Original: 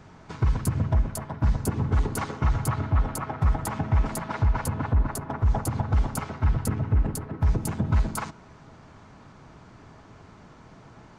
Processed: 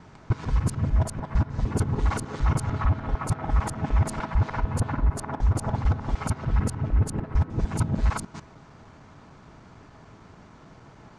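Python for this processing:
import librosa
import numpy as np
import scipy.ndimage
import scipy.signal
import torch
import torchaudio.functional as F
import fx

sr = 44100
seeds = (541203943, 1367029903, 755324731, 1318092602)

y = fx.local_reverse(x, sr, ms=150.0)
y = scipy.signal.sosfilt(scipy.signal.butter(4, 9700.0, 'lowpass', fs=sr, output='sos'), y)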